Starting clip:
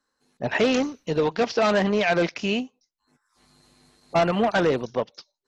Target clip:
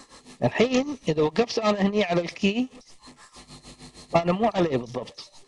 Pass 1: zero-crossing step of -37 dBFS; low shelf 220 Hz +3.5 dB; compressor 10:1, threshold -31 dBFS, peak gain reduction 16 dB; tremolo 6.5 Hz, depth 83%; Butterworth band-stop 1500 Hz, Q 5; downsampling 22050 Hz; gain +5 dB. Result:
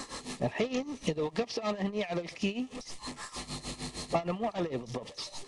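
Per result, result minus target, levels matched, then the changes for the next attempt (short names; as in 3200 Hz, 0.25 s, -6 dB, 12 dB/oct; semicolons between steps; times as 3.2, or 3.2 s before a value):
compressor: peak gain reduction +10.5 dB; zero-crossing step: distortion +7 dB
change: compressor 10:1, threshold -19.5 dBFS, peak gain reduction 5.5 dB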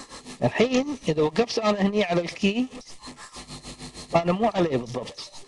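zero-crossing step: distortion +7 dB
change: zero-crossing step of -44.5 dBFS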